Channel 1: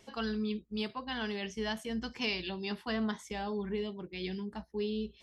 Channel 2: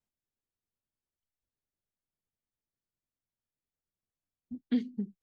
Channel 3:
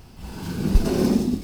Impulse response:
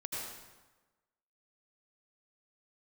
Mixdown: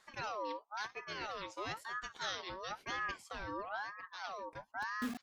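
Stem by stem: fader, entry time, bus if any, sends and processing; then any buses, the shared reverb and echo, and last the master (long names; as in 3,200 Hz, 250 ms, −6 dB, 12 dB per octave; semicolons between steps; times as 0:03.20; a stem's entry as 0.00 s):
−3.5 dB, 0.00 s, no send, ring modulator whose carrier an LFO sweeps 1,100 Hz, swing 35%, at 1 Hz
−9.5 dB, 0.30 s, no send, mains-hum notches 60/120/180/240/300/360/420 Hz; bit reduction 6 bits
muted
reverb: not used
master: no processing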